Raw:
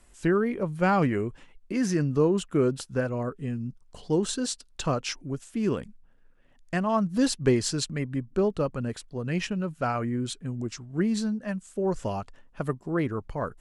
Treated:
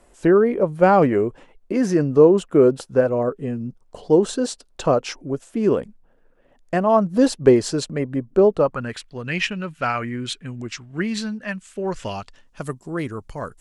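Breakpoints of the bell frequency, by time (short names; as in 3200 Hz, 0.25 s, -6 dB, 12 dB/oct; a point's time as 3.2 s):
bell +12.5 dB 2.1 oct
8.54 s 540 Hz
8.96 s 2400 Hz
11.94 s 2400 Hz
12.7 s 8200 Hz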